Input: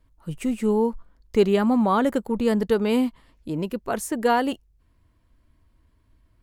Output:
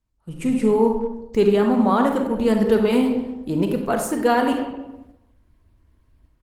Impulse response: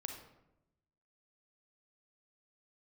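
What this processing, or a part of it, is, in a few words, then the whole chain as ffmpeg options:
speakerphone in a meeting room: -filter_complex "[1:a]atrim=start_sample=2205[link_01];[0:a][link_01]afir=irnorm=-1:irlink=0,asplit=2[link_02][link_03];[link_03]adelay=200,highpass=300,lowpass=3400,asoftclip=type=hard:threshold=-18.5dB,volume=-17dB[link_04];[link_02][link_04]amix=inputs=2:normalize=0,dynaudnorm=framelen=110:gausssize=7:maxgain=16dB,agate=range=-7dB:threshold=-40dB:ratio=16:detection=peak,volume=-4.5dB" -ar 48000 -c:a libopus -b:a 20k

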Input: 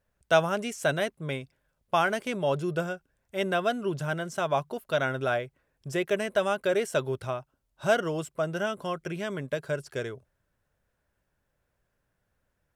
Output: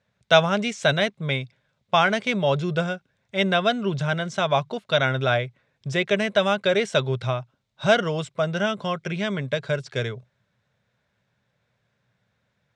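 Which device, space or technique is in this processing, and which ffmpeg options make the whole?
car door speaker: -af "highpass=110,equalizer=frequency=120:width_type=q:width=4:gain=10,equalizer=frequency=200:width_type=q:width=4:gain=6,equalizer=frequency=320:width_type=q:width=4:gain=-8,equalizer=frequency=2200:width_type=q:width=4:gain=6,equalizer=frequency=3700:width_type=q:width=4:gain=9,lowpass=frequency=6900:width=0.5412,lowpass=frequency=6900:width=1.3066,volume=5dB"

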